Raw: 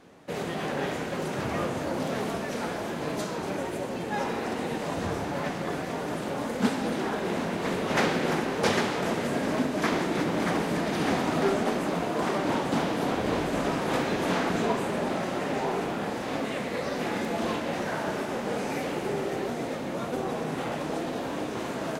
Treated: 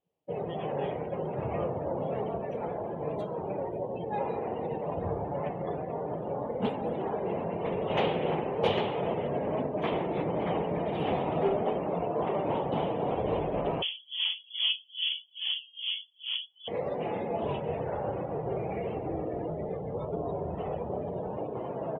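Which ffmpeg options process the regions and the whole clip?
-filter_complex "[0:a]asettb=1/sr,asplit=3[s0][s1][s2];[s0]atrim=end=13.824[s3];[s1]atrim=start=13.82:end=16.68,asetpts=PTS-STARTPTS,afade=t=in:d=0.004:c=qsin,afade=t=out:st=2.856:d=0.004:c=qsin,lowpass=f=3100:t=q:w=0.5098,lowpass=f=3100:t=q:w=0.6013,lowpass=f=3100:t=q:w=0.9,lowpass=f=3100:t=q:w=2.563,afreqshift=-3600,aeval=exprs='val(0)*pow(10,-21*(0.5-0.5*cos(2*PI*2.4*n/s))/20)':c=same[s4];[s2]atrim=start=16.676[s5];[s3][s4]acrossfade=d=0.004:c1=hsin:c2=qsin[s6];[s6][s5]acrossfade=d=0.004:c1=qsin:c2=hsin,asettb=1/sr,asplit=3[s7][s8][s9];[s7]atrim=end=17.454[s10];[s8]atrim=start=17.45:end=21.37,asetpts=PTS-STARTPTS,afade=t=in:d=0.004:c=qsin,afade=t=out:st=3.916:d=0.004:c=qsin,highpass=170,afreqshift=-78[s11];[s9]atrim=start=21.366[s12];[s10][s11]acrossfade=d=0.004:c1=hsin:c2=qsin[s13];[s13][s12]acrossfade=d=0.004:c1=qsin:c2=hsin,afftdn=nr=30:nf=-36,firequalizer=gain_entry='entry(140,0);entry(250,-10);entry(440,1);entry(880,-1);entry(1500,-15);entry(3000,3);entry(5100,-23);entry(12000,0)':delay=0.05:min_phase=1"

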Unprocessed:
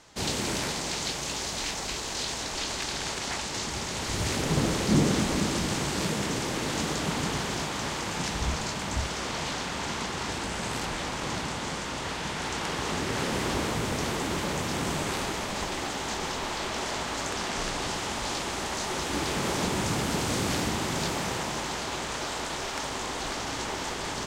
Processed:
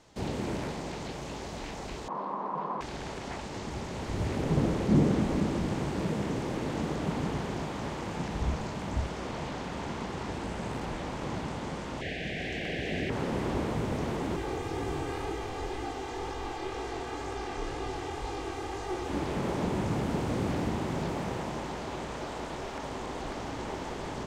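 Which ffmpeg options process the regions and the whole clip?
-filter_complex "[0:a]asettb=1/sr,asplit=3[s0][s1][s2];[s0]atrim=end=2.084[s3];[s1]atrim=start=2.08:end=2.81,asetpts=PTS-STARTPTS,afade=t=in:d=0.004:c=qsin,afade=t=out:st=0.726:d=0.004:c=qsin,lowpass=f=890:t=q:w=5.6,afreqshift=140[s4];[s2]atrim=start=2.806[s5];[s3][s4]acrossfade=d=0.004:c1=hsin:c2=qsin[s6];[s6][s5]acrossfade=d=0.004:c1=qsin:c2=hsin,asettb=1/sr,asplit=3[s7][s8][s9];[s7]atrim=end=12.014[s10];[s8]atrim=start=12.01:end=13.1,asetpts=PTS-STARTPTS,afade=t=in:d=0.004:c=qsin,afade=t=out:st=1.086:d=0.004:c=qsin,asuperstop=centerf=1100:order=12:qfactor=1.3,equalizer=f=2500:t=o:w=1.9:g=11.5,asoftclip=type=hard:threshold=0.0944[s11];[s9]atrim=start=13.096[s12];[s10][s11]acrossfade=d=0.004:c1=hsin:c2=qsin[s13];[s13][s12]acrossfade=d=0.004:c1=qsin:c2=hsin,asettb=1/sr,asplit=3[s14][s15][s16];[s14]atrim=end=14.364[s17];[s15]atrim=start=14.36:end=19.08,asetpts=PTS-STARTPTS,afade=t=in:d=0.004:c=qsin,afade=t=out:st=4.716:d=0.004:c=qsin,aecho=1:1:2.5:0.87,atrim=end_sample=208152,flanger=delay=17.5:depth=7.5:speed=2[s18];[s16]atrim=start=19.076[s19];[s17][s18]acrossfade=d=0.004:c1=hsin:c2=qsin[s20];[s20][s19]acrossfade=d=0.004:c1=qsin:c2=hsin,highshelf=f=2400:g=-9,acrossover=split=2500[s21][s22];[s22]acompressor=threshold=0.00398:ratio=4:attack=1:release=60[s23];[s21][s23]amix=inputs=2:normalize=0,equalizer=f=1400:w=1:g=-5"

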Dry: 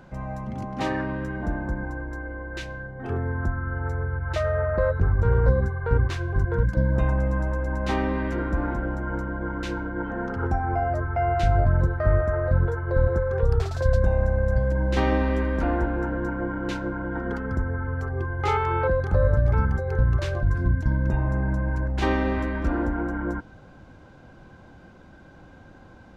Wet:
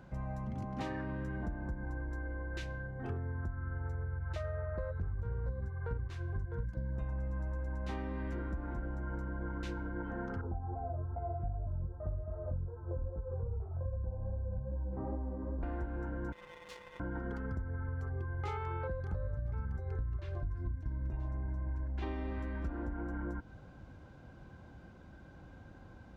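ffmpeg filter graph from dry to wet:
-filter_complex "[0:a]asettb=1/sr,asplit=3[s0][s1][s2];[s0]atrim=end=10.414[s3];[s1]atrim=start=10.41:end=15.63,asetpts=PTS-STARTPTS,afade=t=in:d=0.004:c=qsin,afade=t=out:st=5.216:d=0.004:c=qsin,lowpass=f=1000:w=0.5412,lowpass=f=1000:w=1.3066,flanger=delay=18:depth=4.2:speed=2.5[s4];[s2]atrim=start=15.626[s5];[s3][s4]acrossfade=d=0.004:c1=hsin:c2=qsin[s6];[s6][s5]acrossfade=d=0.004:c1=qsin:c2=hsin,asettb=1/sr,asplit=3[s7][s8][s9];[s7]atrim=end=16.324[s10];[s8]atrim=start=16.32:end=17,asetpts=PTS-STARTPTS,afade=t=in:d=0.004:c=qsin,afade=t=out:st=0.676:d=0.004:c=qsin,highpass=1100,aeval=exprs='max(val(0),0)':c=same,aeval=exprs='val(0)*sin(2*PI*500*n/s)':c=same[s11];[s9]atrim=start=16.996[s12];[s10][s11]acrossfade=d=0.004:c1=hsin:c2=qsin[s13];[s13][s12]acrossfade=d=0.004:c1=qsin:c2=hsin,asettb=1/sr,asplit=3[s14][s15][s16];[s14]atrim=end=19.784[s17];[s15]atrim=start=19.78:end=22.31,asetpts=PTS-STARTPTS,afade=t=in:d=0.004:c=qsin,afade=t=out:st=2.526:d=0.004:c=qsin,aecho=1:1:2.9:0.42,atrim=end_sample=111573,aecho=1:1:981:0.133,atrim=end_sample=111573,acrossover=split=4300[s18][s19];[s19]acompressor=threshold=0.00112:ratio=4:attack=1:release=60[s20];[s18][s20]amix=inputs=2:normalize=0[s21];[s16]atrim=start=22.306[s22];[s17][s21]acrossfade=d=0.004:c1=hsin:c2=qsin[s23];[s23][s22]acrossfade=d=0.004:c1=qsin:c2=hsin,highpass=40,lowshelf=f=120:g=9,acompressor=threshold=0.0447:ratio=6,volume=0.398"

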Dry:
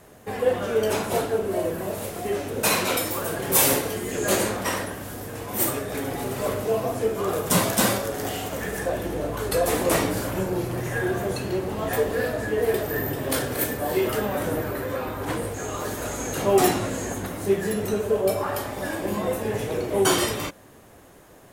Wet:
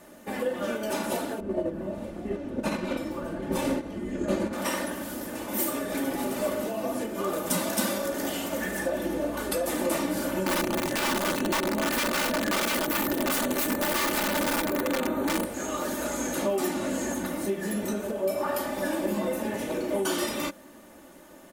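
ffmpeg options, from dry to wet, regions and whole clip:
-filter_complex "[0:a]asettb=1/sr,asplit=3[s0][s1][s2];[s0]atrim=end=1.404[s3];[s1]atrim=start=1.4:end=4.53,asetpts=PTS-STARTPTS,afade=t=in:d=0.004:c=qsin,afade=t=out:st=3.126:d=0.004:c=qsin,aemphasis=mode=reproduction:type=riaa,agate=range=0.398:threshold=0.0891:ratio=16:release=100:detection=peak[s4];[s2]atrim=start=4.526[s5];[s3][s4]acrossfade=d=0.004:c1=hsin:c2=qsin[s6];[s6][s5]acrossfade=d=0.004:c1=qsin:c2=hsin,asettb=1/sr,asplit=3[s7][s8][s9];[s7]atrim=end=10.464[s10];[s8]atrim=start=10.46:end=15.45,asetpts=PTS-STARTPTS,afade=t=in:d=0.004:c=qsin,afade=t=out:st=4.986:d=0.004:c=qsin,asuperstop=centerf=5100:order=12:qfactor=4.6,equalizer=f=260:w=0.4:g=7.5,aeval=exprs='(mod(6.31*val(0)+1,2)-1)/6.31':c=same[s11];[s9]atrim=start=15.446[s12];[s10][s11]acrossfade=d=0.004:c1=hsin:c2=qsin[s13];[s13][s12]acrossfade=d=0.004:c1=qsin:c2=hsin,acompressor=threshold=0.0562:ratio=4,lowshelf=f=130:t=q:w=3:g=-6.5,aecho=1:1:3.4:0.73,volume=0.794"

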